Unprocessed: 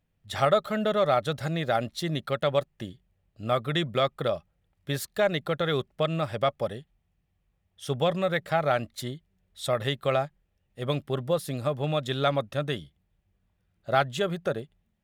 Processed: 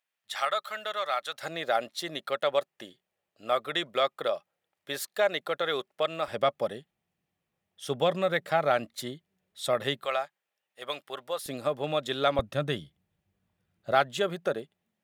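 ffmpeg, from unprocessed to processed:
-af "asetnsamples=n=441:p=0,asendcmd='1.43 highpass f 450;6.28 highpass f 210;10.05 highpass f 760;11.46 highpass f 270;12.39 highpass f 110;13.92 highpass f 240',highpass=1.1k"

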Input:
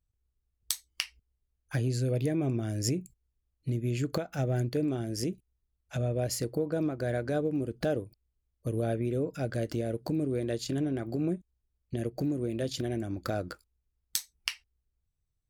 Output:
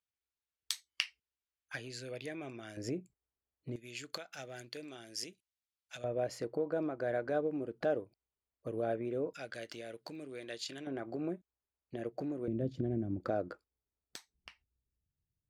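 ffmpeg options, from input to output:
-af "asetnsamples=n=441:p=0,asendcmd='2.77 bandpass f 800;3.76 bandpass f 3800;6.04 bandpass f 910;9.33 bandpass f 2800;10.87 bandpass f 990;12.48 bandpass f 190;13.2 bandpass f 530;14.34 bandpass f 190',bandpass=f=2.4k:t=q:w=0.71:csg=0"

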